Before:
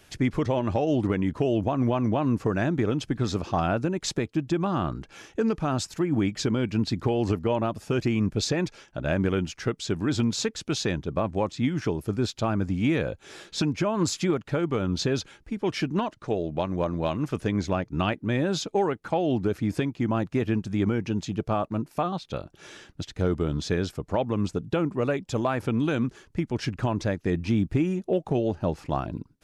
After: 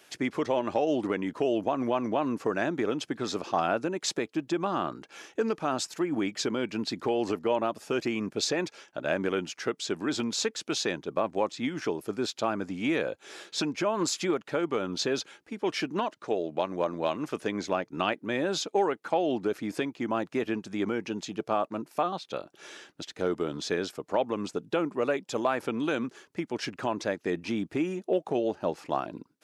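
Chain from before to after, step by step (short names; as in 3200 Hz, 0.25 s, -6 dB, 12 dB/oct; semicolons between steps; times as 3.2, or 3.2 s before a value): HPF 320 Hz 12 dB/oct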